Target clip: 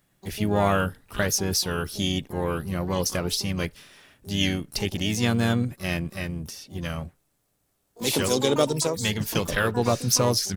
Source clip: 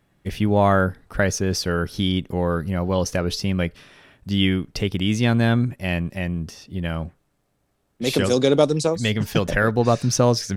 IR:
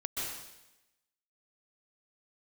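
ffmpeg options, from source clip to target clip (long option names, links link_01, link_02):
-filter_complex "[0:a]crystalizer=i=2.5:c=0,asplit=3[link_01][link_02][link_03];[link_02]asetrate=37084,aresample=44100,atempo=1.18921,volume=-10dB[link_04];[link_03]asetrate=88200,aresample=44100,atempo=0.5,volume=-12dB[link_05];[link_01][link_04][link_05]amix=inputs=3:normalize=0,volume=-6dB"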